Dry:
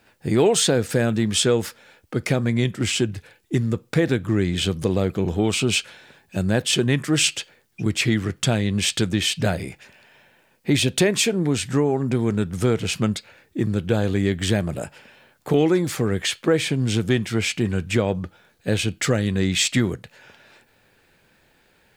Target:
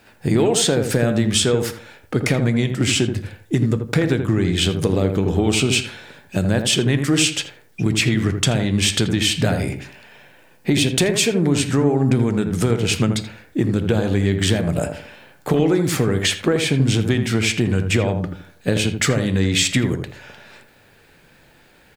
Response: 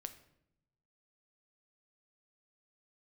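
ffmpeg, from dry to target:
-filter_complex "[0:a]acompressor=threshold=0.0891:ratio=6,asplit=2[s0][s1];[s1]adelay=82,lowpass=f=1100:p=1,volume=0.531,asplit=2[s2][s3];[s3]adelay=82,lowpass=f=1100:p=1,volume=0.33,asplit=2[s4][s5];[s5]adelay=82,lowpass=f=1100:p=1,volume=0.33,asplit=2[s6][s7];[s7]adelay=82,lowpass=f=1100:p=1,volume=0.33[s8];[s0][s2][s4][s6][s8]amix=inputs=5:normalize=0,asplit=2[s9][s10];[1:a]atrim=start_sample=2205,atrim=end_sample=3969[s11];[s10][s11]afir=irnorm=-1:irlink=0,volume=2.51[s12];[s9][s12]amix=inputs=2:normalize=0,volume=0.841"

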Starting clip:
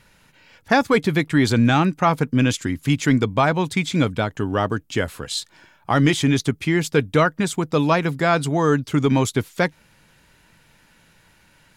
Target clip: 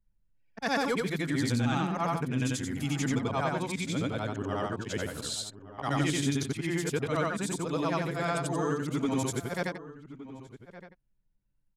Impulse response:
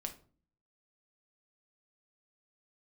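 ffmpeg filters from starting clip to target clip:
-filter_complex "[0:a]afftfilt=real='re':imag='-im':win_size=8192:overlap=0.75,aemphasis=mode=production:type=75fm,anlmdn=1,lowpass=9100,asplit=2[s0][s1];[s1]acompressor=threshold=0.0251:ratio=12,volume=1.41[s2];[s0][s2]amix=inputs=2:normalize=0,asplit=2[s3][s4];[s4]adelay=1166,volume=0.178,highshelf=f=4000:g=-26.2[s5];[s3][s5]amix=inputs=2:normalize=0,adynamicequalizer=threshold=0.0158:dfrequency=1700:dqfactor=0.7:tfrequency=1700:tqfactor=0.7:attack=5:release=100:ratio=0.375:range=3:mode=cutabove:tftype=highshelf,volume=0.376"

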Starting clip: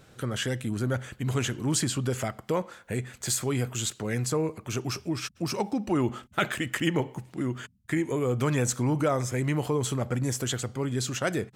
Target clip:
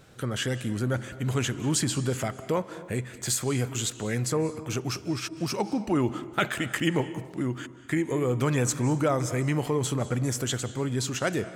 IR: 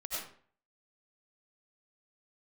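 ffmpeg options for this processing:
-filter_complex "[0:a]asplit=2[s0][s1];[1:a]atrim=start_sample=2205,asetrate=22050,aresample=44100[s2];[s1][s2]afir=irnorm=-1:irlink=0,volume=0.0944[s3];[s0][s3]amix=inputs=2:normalize=0"

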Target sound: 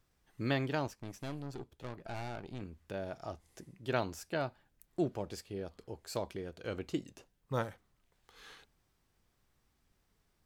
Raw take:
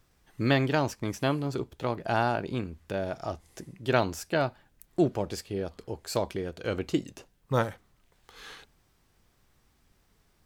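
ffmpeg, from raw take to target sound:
-filter_complex "[0:a]asettb=1/sr,asplit=3[s0][s1][s2];[s0]atrim=end=0.874[s3];[s1]atrim=start=0.87:end=2.61,asetpts=PTS-STARTPTS,afade=t=in:d=0.004:c=qsin,afade=t=out:st=1.736:d=0.004:c=qsin,aeval=exprs='(tanh(25.1*val(0)+0.65)-tanh(0.65))/25.1':c=same[s4];[s2]atrim=start=2.606[s5];[s3][s4]acrossfade=d=0.004:c1=hsin:c2=qsin[s6];[s6][s5]acrossfade=d=0.004:c1=qsin:c2=hsin,volume=0.376"

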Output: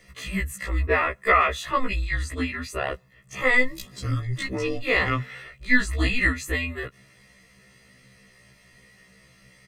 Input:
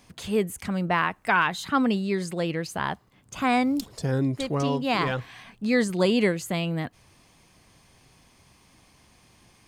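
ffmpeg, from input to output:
-af "equalizer=f=2300:w=2.3:g=10.5,aecho=1:1:1.4:0.83,afreqshift=-250,afftfilt=real='re*1.73*eq(mod(b,3),0)':imag='im*1.73*eq(mod(b,3),0)':win_size=2048:overlap=0.75"

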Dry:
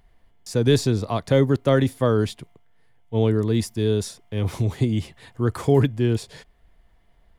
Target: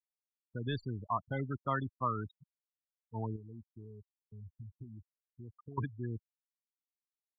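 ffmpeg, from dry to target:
-filter_complex "[0:a]asettb=1/sr,asplit=3[s0][s1][s2];[s0]atrim=end=3.364[s3];[s1]atrim=start=3.36:end=5.78,asetpts=PTS-STARTPTS,afade=t=in:d=0.004:c=qsin,afade=t=out:st=2.416:d=0.004:c=qsin,acompressor=threshold=0.0251:ratio=2.5[s4];[s2]atrim=start=5.776[s5];[s3][s4]acrossfade=d=0.004:c1=hsin:c2=qsin[s6];[s6][s5]acrossfade=d=0.004:c1=qsin:c2=hsin,afftfilt=real='re*gte(hypot(re,im),0.112)':imag='im*gte(hypot(re,im),0.112)':win_size=1024:overlap=0.75,lowpass=f=1200:p=1,lowshelf=f=710:t=q:w=3:g=-11.5,volume=0.562"

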